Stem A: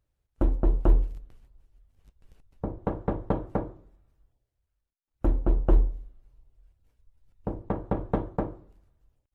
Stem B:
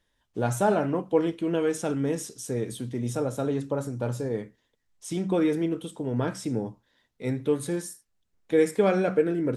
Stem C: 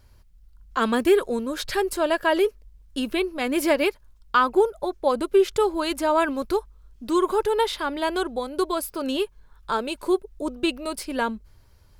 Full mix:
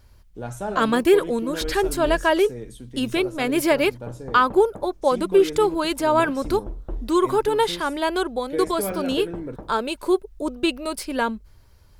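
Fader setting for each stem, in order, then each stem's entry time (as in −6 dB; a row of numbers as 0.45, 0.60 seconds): −11.0, −6.5, +2.0 decibels; 1.20, 0.00, 0.00 seconds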